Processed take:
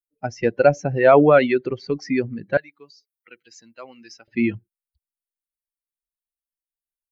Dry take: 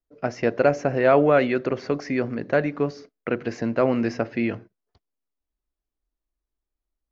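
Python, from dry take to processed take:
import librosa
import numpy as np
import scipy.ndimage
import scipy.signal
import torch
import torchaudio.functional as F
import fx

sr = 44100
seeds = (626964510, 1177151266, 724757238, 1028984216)

y = fx.bin_expand(x, sr, power=2.0)
y = fx.differentiator(y, sr, at=(2.57, 4.28))
y = F.gain(torch.from_numpy(y), 7.0).numpy()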